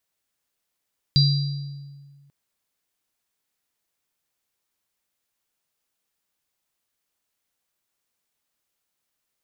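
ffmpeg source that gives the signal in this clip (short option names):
-f lavfi -i "aevalsrc='0.211*pow(10,-3*t/1.74)*sin(2*PI*141*t)+0.075*pow(10,-3*t/0.93)*sin(2*PI*3960*t)+0.133*pow(10,-3*t/0.99)*sin(2*PI*4760*t)':d=1.14:s=44100"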